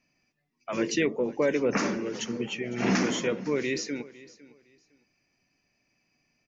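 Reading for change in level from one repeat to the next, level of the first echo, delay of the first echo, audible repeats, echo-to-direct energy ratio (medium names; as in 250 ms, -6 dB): -13.0 dB, -20.0 dB, 507 ms, 2, -20.0 dB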